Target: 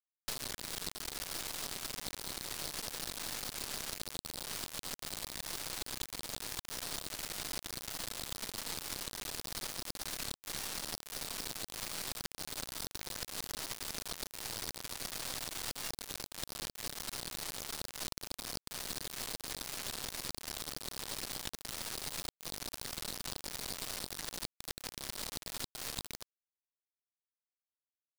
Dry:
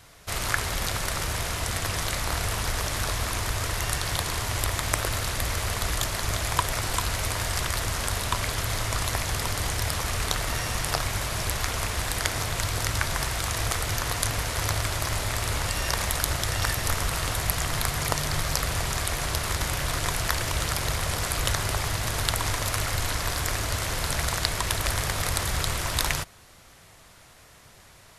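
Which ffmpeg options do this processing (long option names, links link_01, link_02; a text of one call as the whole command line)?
ffmpeg -i in.wav -filter_complex "[0:a]bandpass=frequency=4500:width_type=q:width=2.3:csg=0,acompressor=threshold=-42dB:ratio=12,asplit=2[link_01][link_02];[link_02]aecho=0:1:235:0.266[link_03];[link_01][link_03]amix=inputs=2:normalize=0,asoftclip=type=tanh:threshold=-28.5dB,afftfilt=real='re*gte(hypot(re,im),0.00398)':imag='im*gte(hypot(re,im),0.00398)':win_size=1024:overlap=0.75,acrusher=bits=4:dc=4:mix=0:aa=0.000001,volume=9.5dB" out.wav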